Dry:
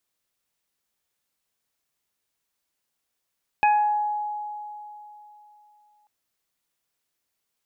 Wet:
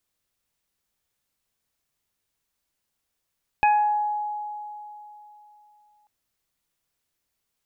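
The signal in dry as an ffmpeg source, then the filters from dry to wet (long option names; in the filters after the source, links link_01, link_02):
-f lavfi -i "aevalsrc='0.178*pow(10,-3*t/3.2)*sin(2*PI*838*t)+0.0473*pow(10,-3*t/0.76)*sin(2*PI*1676*t)+0.0841*pow(10,-3*t/0.38)*sin(2*PI*2514*t)':duration=2.44:sample_rate=44100"
-af "lowshelf=frequency=130:gain=10"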